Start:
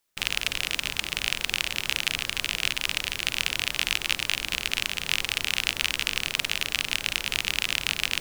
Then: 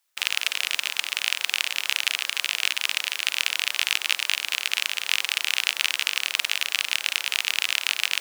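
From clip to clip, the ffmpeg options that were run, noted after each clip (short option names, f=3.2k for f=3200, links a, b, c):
-af "highpass=790,volume=2.5dB"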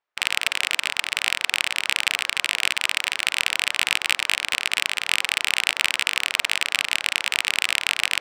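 -filter_complex "[0:a]asplit=2[a][b];[b]asoftclip=type=hard:threshold=-11.5dB,volume=-5dB[c];[a][c]amix=inputs=2:normalize=0,adynamicsmooth=sensitivity=1:basefreq=1.5k"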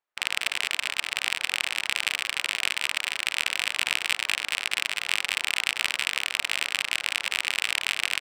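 -af "aecho=1:1:192:0.316,volume=-4.5dB"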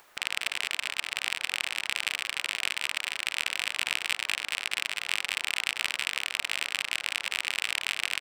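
-af "acompressor=mode=upward:threshold=-29dB:ratio=2.5,volume=-3.5dB"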